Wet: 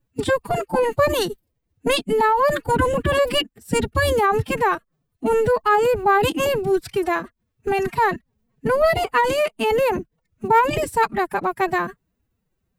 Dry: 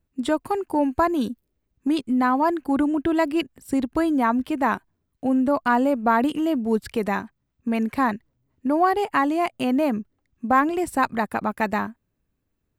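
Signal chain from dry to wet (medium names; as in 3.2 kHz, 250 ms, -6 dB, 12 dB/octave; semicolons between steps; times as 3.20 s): formant-preserving pitch shift +9.5 st; trim +3 dB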